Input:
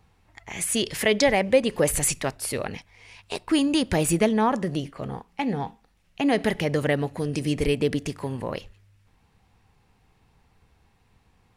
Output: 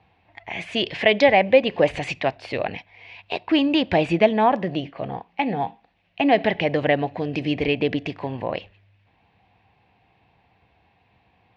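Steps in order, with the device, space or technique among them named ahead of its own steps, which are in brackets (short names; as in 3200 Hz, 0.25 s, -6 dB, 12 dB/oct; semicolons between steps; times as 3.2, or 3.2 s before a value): guitar cabinet (speaker cabinet 110–3700 Hz, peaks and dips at 150 Hz -5 dB, 230 Hz -5 dB, 420 Hz -4 dB, 700 Hz +7 dB, 1300 Hz -8 dB, 2500 Hz +4 dB); gain +4 dB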